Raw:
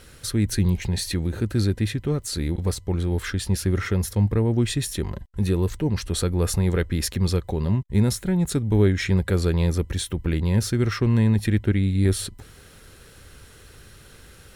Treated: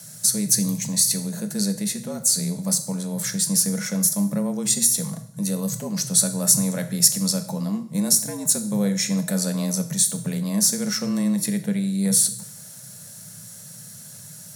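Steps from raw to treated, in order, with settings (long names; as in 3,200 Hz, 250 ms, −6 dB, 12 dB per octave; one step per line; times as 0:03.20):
drawn EQ curve 110 Hz 0 dB, 200 Hz −15 dB, 280 Hz −13 dB, 570 Hz −1 dB, 2,900 Hz −6 dB, 6,200 Hz +15 dB
frequency shifter +99 Hz
coupled-rooms reverb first 0.59 s, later 1.7 s, from −24 dB, DRR 7.5 dB
level −1 dB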